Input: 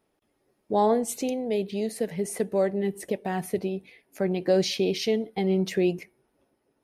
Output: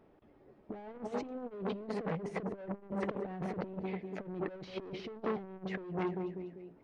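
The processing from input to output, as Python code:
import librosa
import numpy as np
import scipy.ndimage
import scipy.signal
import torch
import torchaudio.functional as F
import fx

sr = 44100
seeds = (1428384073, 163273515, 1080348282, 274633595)

y = fx.echo_feedback(x, sr, ms=196, feedback_pct=50, wet_db=-20)
y = np.clip(10.0 ** (29.0 / 20.0) * y, -1.0, 1.0) / 10.0 ** (29.0 / 20.0)
y = fx.over_compress(y, sr, threshold_db=-38.0, ratio=-0.5)
y = fx.spacing_loss(y, sr, db_at_10k=43)
y = fx.transformer_sat(y, sr, knee_hz=940.0)
y = F.gain(torch.from_numpy(y), 6.0).numpy()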